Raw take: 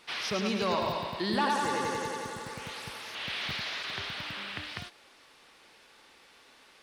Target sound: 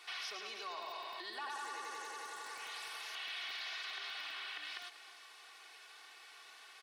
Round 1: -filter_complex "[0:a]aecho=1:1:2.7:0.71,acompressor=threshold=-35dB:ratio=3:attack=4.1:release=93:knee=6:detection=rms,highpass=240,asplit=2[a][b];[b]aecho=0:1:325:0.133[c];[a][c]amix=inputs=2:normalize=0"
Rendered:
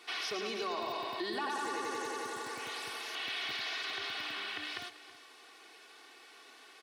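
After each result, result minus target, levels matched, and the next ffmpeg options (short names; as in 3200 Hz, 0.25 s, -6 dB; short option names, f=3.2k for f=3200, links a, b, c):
250 Hz band +12.5 dB; compressor: peak gain reduction -5.5 dB
-filter_complex "[0:a]aecho=1:1:2.7:0.71,acompressor=threshold=-35dB:ratio=3:attack=4.1:release=93:knee=6:detection=rms,highpass=750,asplit=2[a][b];[b]aecho=0:1:325:0.133[c];[a][c]amix=inputs=2:normalize=0"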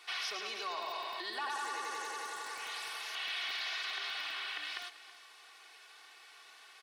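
compressor: peak gain reduction -5.5 dB
-filter_complex "[0:a]aecho=1:1:2.7:0.71,acompressor=threshold=-43dB:ratio=3:attack=4.1:release=93:knee=6:detection=rms,highpass=750,asplit=2[a][b];[b]aecho=0:1:325:0.133[c];[a][c]amix=inputs=2:normalize=0"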